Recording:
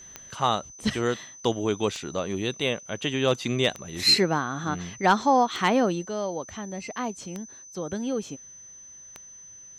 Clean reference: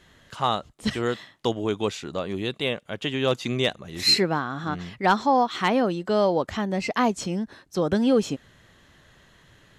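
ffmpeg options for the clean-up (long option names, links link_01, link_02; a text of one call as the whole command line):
ffmpeg -i in.wav -af "adeclick=threshold=4,bandreject=frequency=6100:width=30,asetnsamples=nb_out_samples=441:pad=0,asendcmd='6.05 volume volume 9dB',volume=0dB" out.wav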